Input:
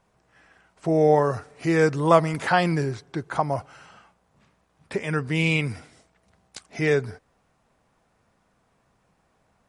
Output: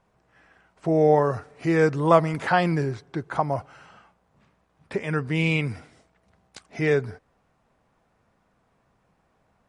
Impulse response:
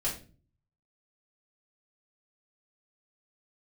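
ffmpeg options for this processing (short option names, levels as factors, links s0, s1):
-af "highshelf=f=4300:g=-8"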